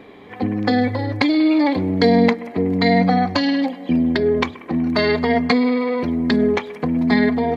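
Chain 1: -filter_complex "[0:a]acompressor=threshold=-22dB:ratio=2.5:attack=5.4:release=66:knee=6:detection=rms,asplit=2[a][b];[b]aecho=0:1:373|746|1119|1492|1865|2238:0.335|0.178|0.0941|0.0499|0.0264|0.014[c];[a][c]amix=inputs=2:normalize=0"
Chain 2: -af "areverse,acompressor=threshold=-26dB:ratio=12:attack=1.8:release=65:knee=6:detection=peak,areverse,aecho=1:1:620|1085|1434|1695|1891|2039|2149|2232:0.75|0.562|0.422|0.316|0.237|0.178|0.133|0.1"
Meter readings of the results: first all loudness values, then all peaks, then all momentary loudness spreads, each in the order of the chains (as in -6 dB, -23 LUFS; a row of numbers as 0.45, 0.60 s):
-23.5, -27.0 LUFS; -9.5, -14.5 dBFS; 4, 5 LU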